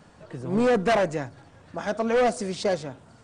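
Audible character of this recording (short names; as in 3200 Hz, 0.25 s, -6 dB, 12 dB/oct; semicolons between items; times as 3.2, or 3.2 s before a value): noise floor -54 dBFS; spectral tilt -4.5 dB/oct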